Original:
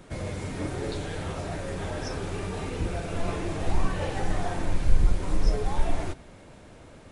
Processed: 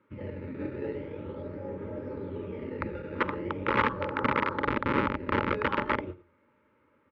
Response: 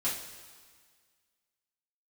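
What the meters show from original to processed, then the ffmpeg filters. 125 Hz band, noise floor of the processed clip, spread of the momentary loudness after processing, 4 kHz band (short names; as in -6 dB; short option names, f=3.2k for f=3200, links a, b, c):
-7.5 dB, -68 dBFS, 12 LU, -3.0 dB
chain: -filter_complex "[0:a]afwtdn=0.0355,asplit=2[a][b];[b]acrusher=samples=14:mix=1:aa=0.000001:lfo=1:lforange=14:lforate=0.41,volume=-6dB[c];[a][c]amix=inputs=2:normalize=0,flanger=delay=9.3:depth=4.7:regen=79:speed=0.52:shape=triangular,aecho=1:1:106:0.1,aeval=exprs='(mod(10.6*val(0)+1,2)-1)/10.6':c=same,asuperstop=centerf=720:order=12:qfactor=3.2,highpass=130,equalizer=f=160:t=q:w=4:g=-10,equalizer=f=250:t=q:w=4:g=3,equalizer=f=780:t=q:w=4:g=9,equalizer=f=1.3k:t=q:w=4:g=8,equalizer=f=2.1k:t=q:w=4:g=5,lowpass=f=2.8k:w=0.5412,lowpass=f=2.8k:w=1.3066"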